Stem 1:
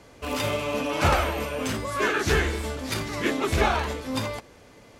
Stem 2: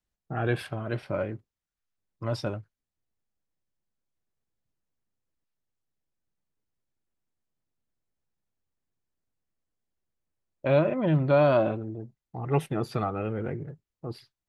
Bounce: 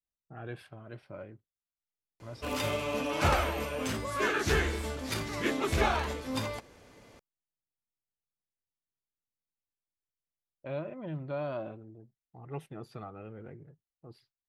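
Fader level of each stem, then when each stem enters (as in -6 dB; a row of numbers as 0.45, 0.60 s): -5.0, -14.5 dB; 2.20, 0.00 s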